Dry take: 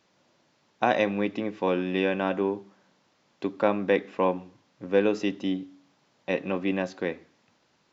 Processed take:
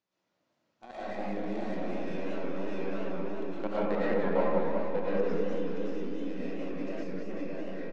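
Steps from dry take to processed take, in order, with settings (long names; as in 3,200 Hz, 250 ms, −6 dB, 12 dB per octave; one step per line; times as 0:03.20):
stylus tracing distortion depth 0.14 ms
repeating echo 608 ms, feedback 24%, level −4.5 dB
output level in coarse steps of 20 dB
harmonic and percussive parts rebalanced percussive −7 dB
treble cut that deepens with the level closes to 2,900 Hz, closed at −31.5 dBFS
convolution reverb RT60 1.6 s, pre-delay 75 ms, DRR −9.5 dB
gain on a spectral selection 0:07.03–0:07.30, 500–4,400 Hz −11 dB
feedback echo with a swinging delay time 190 ms, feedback 62%, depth 214 cents, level −4 dB
level −7 dB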